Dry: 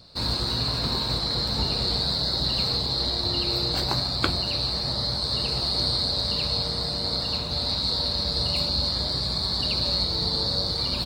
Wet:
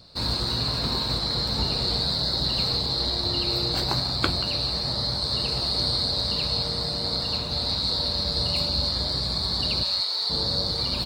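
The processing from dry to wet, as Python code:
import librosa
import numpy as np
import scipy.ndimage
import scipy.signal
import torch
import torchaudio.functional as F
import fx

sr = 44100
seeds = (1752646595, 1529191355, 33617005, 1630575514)

p1 = fx.highpass(x, sr, hz=890.0, slope=12, at=(9.83, 10.3))
y = p1 + fx.echo_single(p1, sr, ms=182, db=-16.0, dry=0)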